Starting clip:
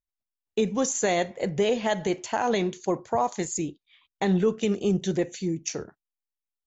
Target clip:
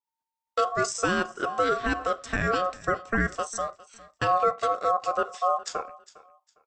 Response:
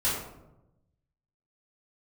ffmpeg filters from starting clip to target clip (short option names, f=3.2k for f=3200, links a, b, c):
-filter_complex "[0:a]asettb=1/sr,asplit=3[a][b][c];[a]atrim=end=5.344[d];[b]atrim=start=5.34:end=5.81,asetpts=PTS-STARTPTS,afade=t=in:d=0.004:c=qsin,afade=t=out:st=0.466:d=0.004:c=qsin,equalizer=f=90:w=0.56:g=10[e];[c]atrim=start=5.806[f];[d][e]acrossfade=d=0.004:c1=hsin:c2=qsin[g];[g][f]acrossfade=d=0.004:c1=qsin:c2=hsin,aeval=exprs='val(0)*sin(2*PI*910*n/s)':c=same,aecho=1:1:406|812:0.0891|0.0214,adynamicequalizer=threshold=0.00891:dfrequency=2000:dqfactor=0.7:tfrequency=2000:tqfactor=0.7:attack=5:release=100:ratio=0.375:range=3.5:mode=cutabove:tftype=highshelf,volume=2.5dB"